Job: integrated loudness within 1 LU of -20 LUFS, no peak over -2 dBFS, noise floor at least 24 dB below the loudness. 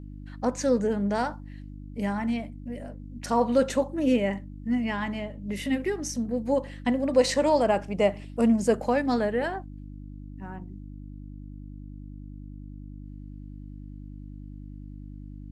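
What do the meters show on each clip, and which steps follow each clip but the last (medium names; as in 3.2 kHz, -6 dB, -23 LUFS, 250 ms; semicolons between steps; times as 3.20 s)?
hum 50 Hz; highest harmonic 300 Hz; hum level -39 dBFS; loudness -26.5 LUFS; peak level -9.0 dBFS; loudness target -20.0 LUFS
-> de-hum 50 Hz, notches 6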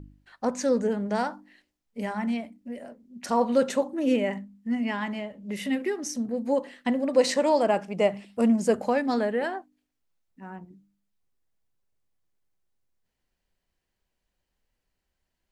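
hum not found; loudness -26.5 LUFS; peak level -9.0 dBFS; loudness target -20.0 LUFS
-> trim +6.5 dB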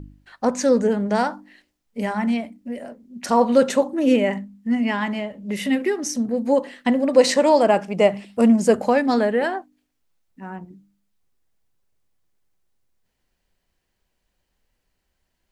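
loudness -20.0 LUFS; peak level -2.5 dBFS; noise floor -75 dBFS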